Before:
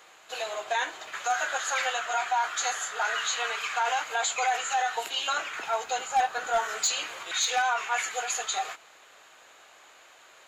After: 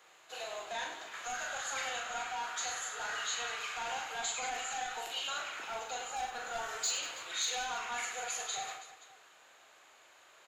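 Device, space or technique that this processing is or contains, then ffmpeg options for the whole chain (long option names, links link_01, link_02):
one-band saturation: -filter_complex "[0:a]acrossover=split=230|3000[link_01][link_02][link_03];[link_02]asoftclip=type=tanh:threshold=-28.5dB[link_04];[link_01][link_04][link_03]amix=inputs=3:normalize=0,aecho=1:1:40|100|190|325|527.5:0.631|0.398|0.251|0.158|0.1,volume=-8.5dB"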